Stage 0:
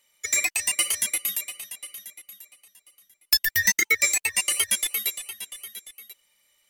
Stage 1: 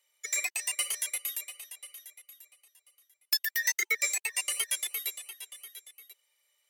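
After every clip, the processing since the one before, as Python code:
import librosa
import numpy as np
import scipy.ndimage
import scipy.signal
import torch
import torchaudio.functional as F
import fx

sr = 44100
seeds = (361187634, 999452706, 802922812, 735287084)

y = scipy.signal.sosfilt(scipy.signal.butter(12, 370.0, 'highpass', fs=sr, output='sos'), x)
y = y * 10.0 ** (-7.5 / 20.0)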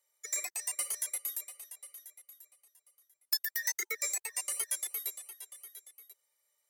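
y = fx.peak_eq(x, sr, hz=2800.0, db=-13.0, octaves=1.0)
y = y * 10.0 ** (-1.5 / 20.0)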